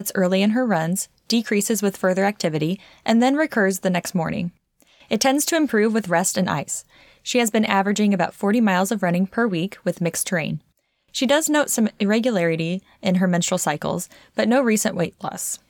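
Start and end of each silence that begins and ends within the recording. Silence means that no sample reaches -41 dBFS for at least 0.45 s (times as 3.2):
10.58–11.14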